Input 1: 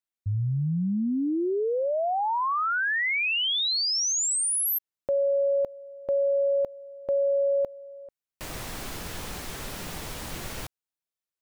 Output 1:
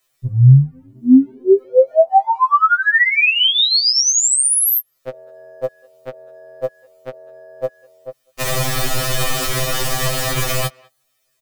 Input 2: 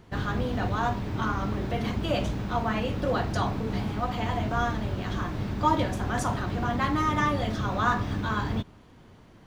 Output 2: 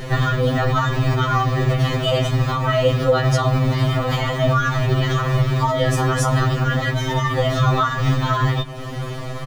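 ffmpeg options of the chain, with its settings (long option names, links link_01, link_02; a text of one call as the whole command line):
ffmpeg -i in.wav -filter_complex "[0:a]aecho=1:1:6.1:0.59,acompressor=threshold=-34dB:ratio=8:attack=1.9:release=238:knee=6:detection=rms,asplit=2[link_01][link_02];[link_02]adelay=200,highpass=300,lowpass=3400,asoftclip=type=hard:threshold=-35dB,volume=-28dB[link_03];[link_01][link_03]amix=inputs=2:normalize=0,alimiter=level_in=33dB:limit=-1dB:release=50:level=0:latency=1,afftfilt=real='re*2.45*eq(mod(b,6),0)':imag='im*2.45*eq(mod(b,6),0)':win_size=2048:overlap=0.75,volume=-6.5dB" out.wav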